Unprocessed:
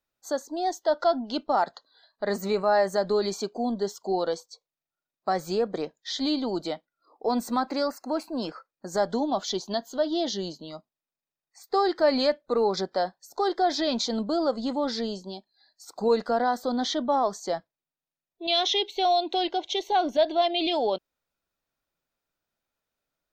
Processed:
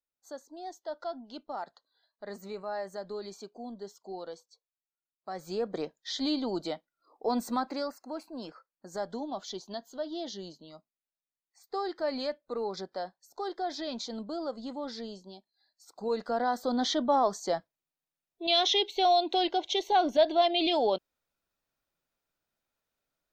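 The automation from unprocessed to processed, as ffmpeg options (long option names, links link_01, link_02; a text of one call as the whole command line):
ffmpeg -i in.wav -af "volume=5.5dB,afade=type=in:start_time=5.29:duration=0.51:silence=0.298538,afade=type=out:start_time=7.48:duration=0.53:silence=0.473151,afade=type=in:start_time=16.02:duration=0.85:silence=0.354813" out.wav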